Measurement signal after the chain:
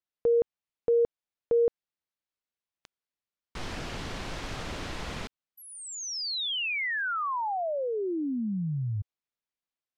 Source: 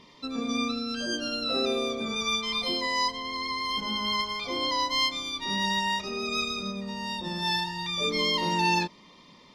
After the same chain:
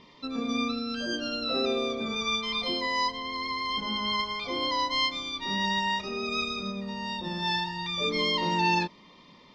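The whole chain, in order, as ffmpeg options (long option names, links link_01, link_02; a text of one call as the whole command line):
ffmpeg -i in.wav -af "lowpass=4800" out.wav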